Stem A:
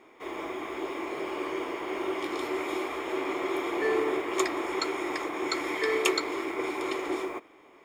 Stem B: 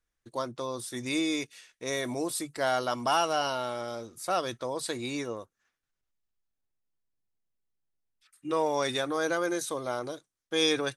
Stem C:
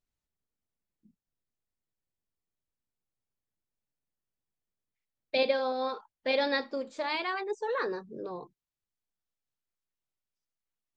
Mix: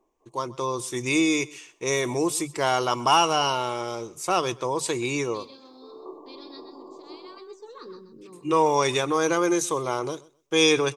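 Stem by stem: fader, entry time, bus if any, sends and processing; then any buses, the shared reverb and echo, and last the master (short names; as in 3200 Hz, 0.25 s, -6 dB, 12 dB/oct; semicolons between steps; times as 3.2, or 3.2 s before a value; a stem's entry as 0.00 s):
-12.0 dB, 0.00 s, no send, no echo send, FFT band-pass 120–1200 Hz; auto duck -21 dB, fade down 0.35 s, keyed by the second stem
0.0 dB, 0.00 s, no send, echo send -22 dB, AGC gain up to 6 dB; ripple EQ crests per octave 0.73, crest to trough 9 dB
7.19 s -11 dB -> 7.39 s -4 dB, 0.00 s, no send, echo send -8.5 dB, EQ curve 350 Hz 0 dB, 650 Hz -20 dB, 1200 Hz -4 dB, 1700 Hz -20 dB, 4400 Hz +2 dB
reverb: off
echo: feedback echo 0.128 s, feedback 18%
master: dry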